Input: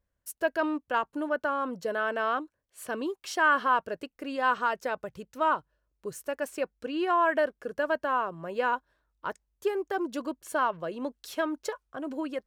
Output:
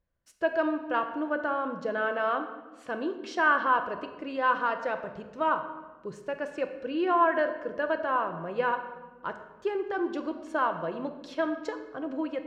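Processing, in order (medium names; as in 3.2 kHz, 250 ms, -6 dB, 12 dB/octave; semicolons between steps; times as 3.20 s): distance through air 150 m; simulated room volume 870 m³, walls mixed, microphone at 0.75 m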